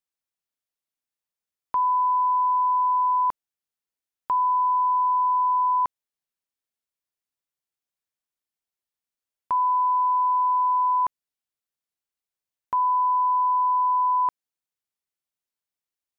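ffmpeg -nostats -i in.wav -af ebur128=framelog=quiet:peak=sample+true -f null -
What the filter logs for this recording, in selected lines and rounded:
Integrated loudness:
  I:         -22.1 LUFS
  Threshold: -32.2 LUFS
Loudness range:
  LRA:         4.8 LU
  Threshold: -44.5 LUFS
  LRA low:   -27.8 LUFS
  LRA high:  -23.0 LUFS
Sample peak:
  Peak:      -18.2 dBFS
True peak:
  Peak:      -18.2 dBFS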